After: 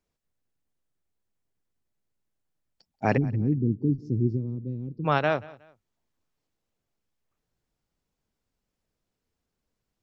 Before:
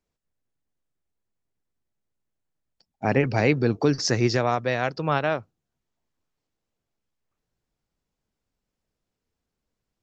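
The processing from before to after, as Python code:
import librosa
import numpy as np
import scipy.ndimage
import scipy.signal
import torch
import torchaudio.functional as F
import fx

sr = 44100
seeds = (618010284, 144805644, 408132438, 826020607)

y = fx.cheby2_lowpass(x, sr, hz=630.0, order=4, stop_db=40, at=(3.16, 5.04), fade=0.02)
y = fx.echo_feedback(y, sr, ms=183, feedback_pct=30, wet_db=-21.0)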